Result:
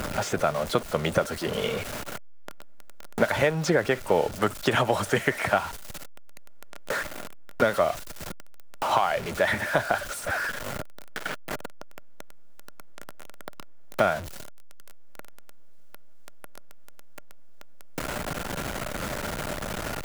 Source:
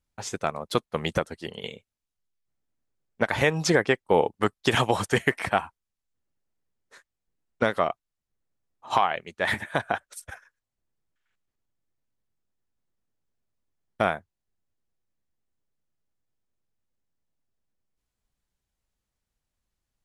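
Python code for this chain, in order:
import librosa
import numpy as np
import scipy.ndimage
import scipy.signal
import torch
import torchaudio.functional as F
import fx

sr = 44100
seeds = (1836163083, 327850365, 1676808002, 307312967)

y = x + 0.5 * 10.0 ** (-30.0 / 20.0) * np.sign(x)
y = fx.small_body(y, sr, hz=(600.0, 1400.0), ring_ms=30, db=8)
y = fx.band_squash(y, sr, depth_pct=70)
y = y * 10.0 ** (-1.5 / 20.0)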